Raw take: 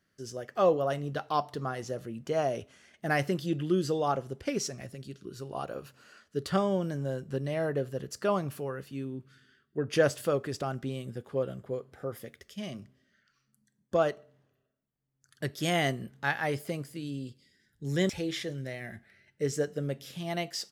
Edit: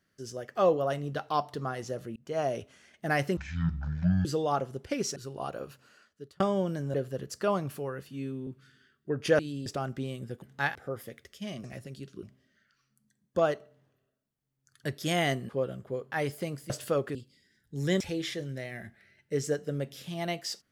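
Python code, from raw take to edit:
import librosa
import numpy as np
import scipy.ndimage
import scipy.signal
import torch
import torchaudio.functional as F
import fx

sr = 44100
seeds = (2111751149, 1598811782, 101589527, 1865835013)

y = fx.edit(x, sr, fx.fade_in_span(start_s=2.16, length_s=0.38, curve='qsin'),
    fx.speed_span(start_s=3.37, length_s=0.44, speed=0.5),
    fx.move(start_s=4.72, length_s=0.59, to_s=12.8),
    fx.fade_out_span(start_s=5.82, length_s=0.73),
    fx.cut(start_s=7.09, length_s=0.66),
    fx.stretch_span(start_s=8.89, length_s=0.26, factor=1.5),
    fx.swap(start_s=10.07, length_s=0.45, other_s=16.97, other_length_s=0.27),
    fx.swap(start_s=11.28, length_s=0.63, other_s=16.06, other_length_s=0.33), tone=tone)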